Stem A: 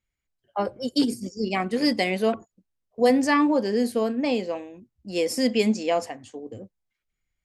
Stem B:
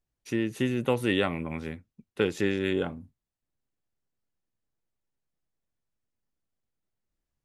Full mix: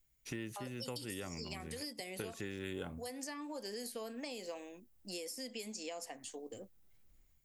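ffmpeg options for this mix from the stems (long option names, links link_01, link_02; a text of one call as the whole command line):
ffmpeg -i stem1.wav -i stem2.wav -filter_complex "[0:a]aemphasis=mode=production:type=riaa,acompressor=threshold=-29dB:ratio=6,volume=-4.5dB,asplit=2[link_01][link_02];[1:a]lowshelf=frequency=120:gain=11,dynaudnorm=framelen=360:gausssize=3:maxgain=11.5dB,volume=-2.5dB[link_03];[link_02]apad=whole_len=328486[link_04];[link_03][link_04]sidechaincompress=threshold=-44dB:ratio=8:attack=12:release=831[link_05];[link_01][link_05]amix=inputs=2:normalize=0,acrossover=split=600|6600[link_06][link_07][link_08];[link_06]acompressor=threshold=-45dB:ratio=4[link_09];[link_07]acompressor=threshold=-48dB:ratio=4[link_10];[link_08]acompressor=threshold=-51dB:ratio=4[link_11];[link_09][link_10][link_11]amix=inputs=3:normalize=0" out.wav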